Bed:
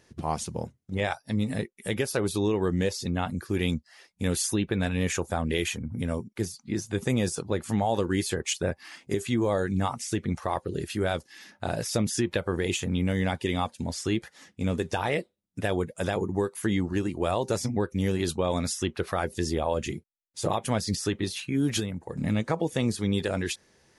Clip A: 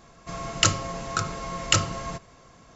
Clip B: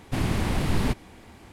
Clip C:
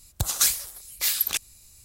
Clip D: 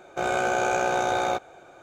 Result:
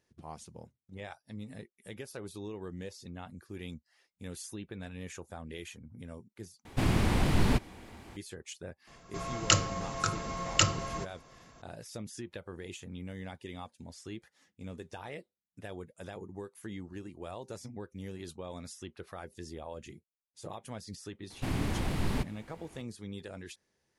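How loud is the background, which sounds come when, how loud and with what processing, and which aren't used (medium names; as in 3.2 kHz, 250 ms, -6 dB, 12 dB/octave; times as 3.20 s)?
bed -16 dB
6.65 s: replace with B -1.5 dB + loudspeaker Doppler distortion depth 0.26 ms
8.87 s: add A -4 dB
21.30 s: add B -7 dB
not used: C, D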